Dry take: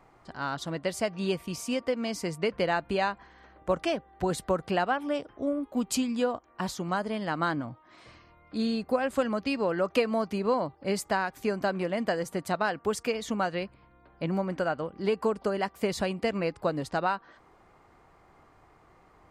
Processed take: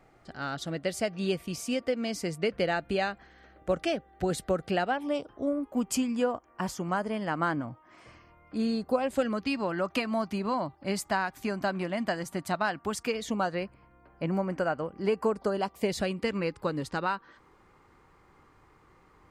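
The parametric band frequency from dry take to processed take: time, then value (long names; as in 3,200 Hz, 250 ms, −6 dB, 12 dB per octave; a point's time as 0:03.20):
parametric band −13.5 dB 0.28 octaves
0:04.82 1,000 Hz
0:05.71 3,900 Hz
0:08.64 3,900 Hz
0:09.55 470 Hz
0:13.01 470 Hz
0:13.60 3,700 Hz
0:15.27 3,700 Hz
0:16.21 680 Hz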